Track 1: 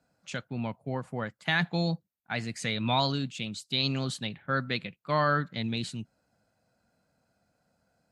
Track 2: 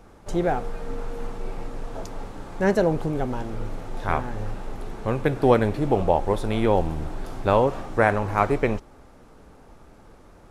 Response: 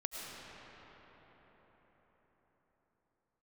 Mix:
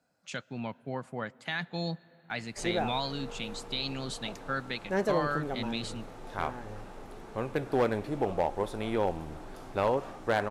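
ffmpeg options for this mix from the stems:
-filter_complex "[0:a]alimiter=limit=0.112:level=0:latency=1:release=384,volume=0.841,asplit=2[s0][s1];[s1]volume=0.0668[s2];[1:a]asoftclip=type=hard:threshold=0.266,adelay=2300,volume=0.447[s3];[2:a]atrim=start_sample=2205[s4];[s2][s4]afir=irnorm=-1:irlink=0[s5];[s0][s3][s5]amix=inputs=3:normalize=0,lowshelf=f=130:g=-10"

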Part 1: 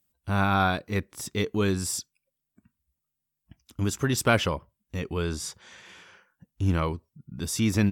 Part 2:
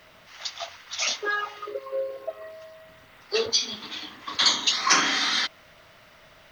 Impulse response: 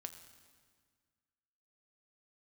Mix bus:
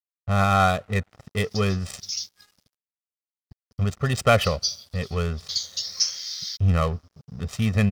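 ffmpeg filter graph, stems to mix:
-filter_complex "[0:a]adynamicsmooth=sensitivity=6:basefreq=750,aecho=1:1:1.6:0.89,volume=1.06,asplit=2[s0][s1];[s1]volume=0.158[s2];[1:a]bandpass=f=5200:t=q:w=7:csg=0,aemphasis=mode=production:type=bsi,adelay=1100,volume=0.841[s3];[2:a]atrim=start_sample=2205[s4];[s2][s4]afir=irnorm=-1:irlink=0[s5];[s0][s3][s5]amix=inputs=3:normalize=0,aeval=exprs='sgn(val(0))*max(abs(val(0))-0.00316,0)':c=same"

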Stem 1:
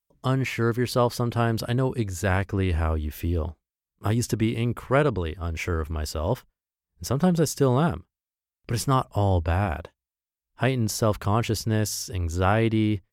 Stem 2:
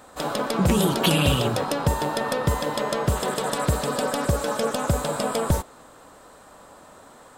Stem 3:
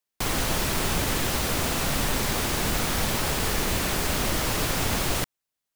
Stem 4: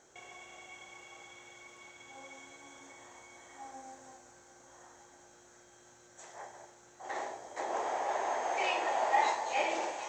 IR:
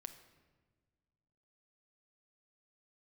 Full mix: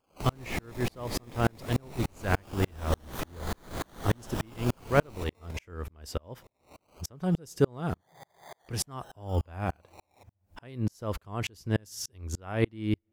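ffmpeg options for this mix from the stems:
-filter_complex "[0:a]volume=1.12,asplit=2[s0][s1];[s1]volume=0.133[s2];[1:a]acompressor=threshold=0.0355:ratio=3,volume=0.447[s3];[2:a]volume=1.12,asplit=2[s4][s5];[s5]volume=0.316[s6];[3:a]adelay=150,volume=0.178,asplit=2[s7][s8];[s8]volume=0.299[s9];[s3][s4][s7]amix=inputs=3:normalize=0,acrusher=samples=23:mix=1:aa=0.000001:lfo=1:lforange=13.8:lforate=0.21,acompressor=threshold=0.0501:ratio=6,volume=1[s10];[4:a]atrim=start_sample=2205[s11];[s2][s6][s9]amix=inputs=3:normalize=0[s12];[s12][s11]afir=irnorm=-1:irlink=0[s13];[s0][s10][s13]amix=inputs=3:normalize=0,acompressor=mode=upward:threshold=0.0224:ratio=2.5,aeval=exprs='val(0)*pow(10,-38*if(lt(mod(-3.4*n/s,1),2*abs(-3.4)/1000),1-mod(-3.4*n/s,1)/(2*abs(-3.4)/1000),(mod(-3.4*n/s,1)-2*abs(-3.4)/1000)/(1-2*abs(-3.4)/1000))/20)':c=same"

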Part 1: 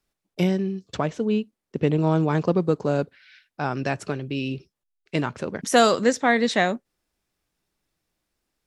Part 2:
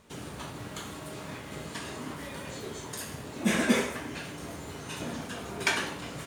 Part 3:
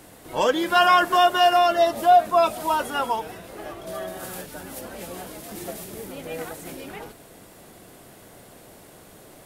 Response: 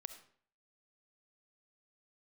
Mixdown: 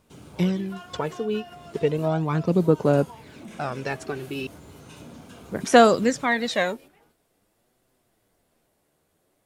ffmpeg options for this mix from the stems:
-filter_complex "[0:a]aphaser=in_gain=1:out_gain=1:delay=2.7:decay=0.57:speed=0.35:type=sinusoidal,volume=0.668,asplit=3[s0][s1][s2];[s0]atrim=end=4.47,asetpts=PTS-STARTPTS,afade=t=out:st=4.466:d=0.004:c=hsin[s3];[s1]atrim=start=4.47:end=5.51,asetpts=PTS-STARTPTS,volume=0[s4];[s2]atrim=start=5.51,asetpts=PTS-STARTPTS,afade=t=in:d=0.004:c=hsin[s5];[s3][s4][s5]concat=n=3:v=0:a=1,asplit=2[s6][s7];[1:a]lowshelf=f=360:g=6,bandreject=f=1800:w=5.9,asoftclip=type=tanh:threshold=0.112,volume=0.398[s8];[2:a]alimiter=limit=0.211:level=0:latency=1,flanger=delay=7.7:depth=6:regen=44:speed=0.51:shape=sinusoidal,volume=0.299[s9];[s7]apad=whole_len=417107[s10];[s9][s10]sidechaingate=range=0.398:threshold=0.00562:ratio=16:detection=peak[s11];[s8][s11]amix=inputs=2:normalize=0,acompressor=threshold=0.0112:ratio=12,volume=1[s12];[s6][s12]amix=inputs=2:normalize=0"

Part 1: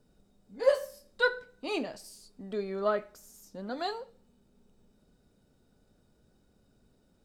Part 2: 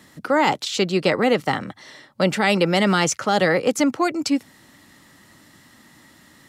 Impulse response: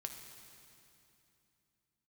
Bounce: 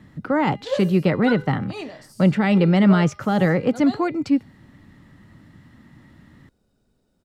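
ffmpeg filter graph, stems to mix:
-filter_complex "[0:a]adelay=50,volume=0.891[s0];[1:a]bass=f=250:g=15,treble=f=4000:g=-15,bandreject=f=406:t=h:w=4,bandreject=f=812:t=h:w=4,bandreject=f=1218:t=h:w=4,bandreject=f=1624:t=h:w=4,bandreject=f=2030:t=h:w=4,bandreject=f=2436:t=h:w=4,bandreject=f=2842:t=h:w=4,bandreject=f=3248:t=h:w=4,bandreject=f=3654:t=h:w=4,bandreject=f=4060:t=h:w=4,bandreject=f=4466:t=h:w=4,bandreject=f=4872:t=h:w=4,bandreject=f=5278:t=h:w=4,bandreject=f=5684:t=h:w=4,volume=0.631[s1];[s0][s1]amix=inputs=2:normalize=0"

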